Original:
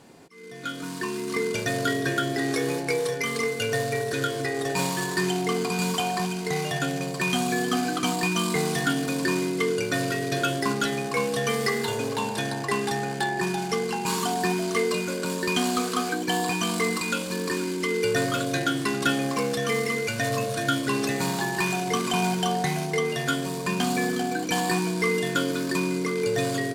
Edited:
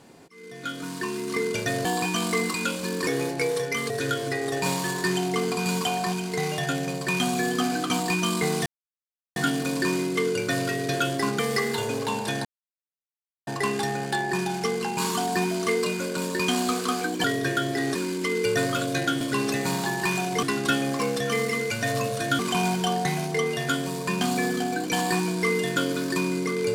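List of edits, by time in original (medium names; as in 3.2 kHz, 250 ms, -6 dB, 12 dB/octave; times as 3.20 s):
1.85–2.56 s: swap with 16.32–17.54 s
3.39–4.03 s: delete
8.79 s: insert silence 0.70 s
10.82–11.49 s: delete
12.55 s: insert silence 1.02 s
20.76–21.98 s: move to 18.80 s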